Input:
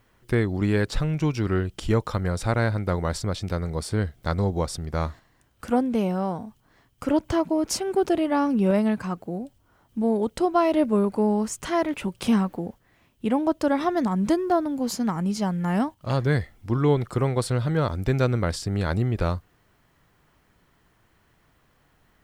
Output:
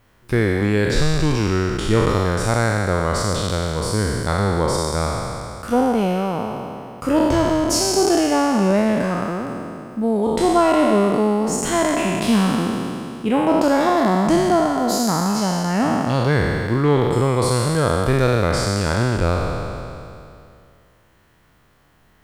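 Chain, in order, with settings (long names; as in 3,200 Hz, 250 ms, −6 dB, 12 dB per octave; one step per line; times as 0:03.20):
peak hold with a decay on every bin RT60 2.59 s
level +2.5 dB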